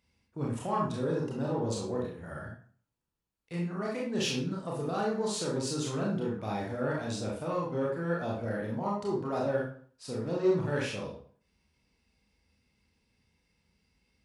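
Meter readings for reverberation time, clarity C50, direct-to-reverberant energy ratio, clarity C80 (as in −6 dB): 0.50 s, 3.5 dB, −3.5 dB, 8.5 dB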